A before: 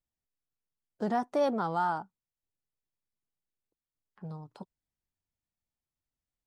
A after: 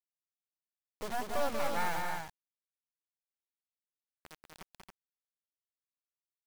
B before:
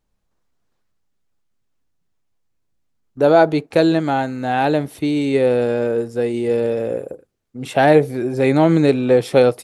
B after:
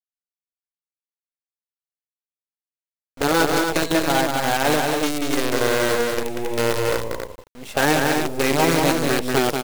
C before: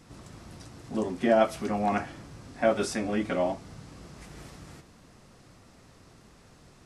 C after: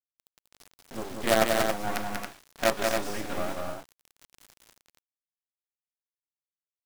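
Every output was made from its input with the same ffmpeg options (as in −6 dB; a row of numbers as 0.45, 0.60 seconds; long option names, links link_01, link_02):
-filter_complex "[0:a]highpass=frequency=370:poles=1,afftfilt=real='re*lt(hypot(re,im),1.26)':imag='im*lt(hypot(re,im),1.26)':win_size=1024:overlap=0.75,adynamicequalizer=threshold=0.00708:dfrequency=2600:dqfactor=1.4:tfrequency=2600:tqfactor=1.4:attack=5:release=100:ratio=0.375:range=2:mode=cutabove:tftype=bell,acrusher=bits=4:dc=4:mix=0:aa=0.000001,asplit=2[link_01][link_02];[link_02]aecho=0:1:188|276:0.631|0.531[link_03];[link_01][link_03]amix=inputs=2:normalize=0"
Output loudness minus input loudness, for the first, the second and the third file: −5.0, −3.5, −1.0 LU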